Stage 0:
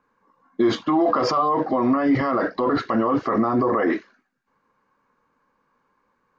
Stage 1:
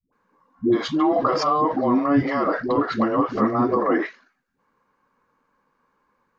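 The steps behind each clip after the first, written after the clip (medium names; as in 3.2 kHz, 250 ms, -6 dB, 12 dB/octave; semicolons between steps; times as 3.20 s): phase dispersion highs, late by 127 ms, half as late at 340 Hz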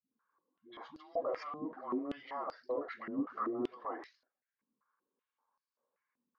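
step-sequenced band-pass 5.2 Hz 240–4800 Hz; trim -8 dB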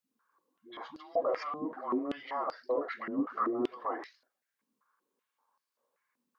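bass shelf 160 Hz -8.5 dB; trim +6 dB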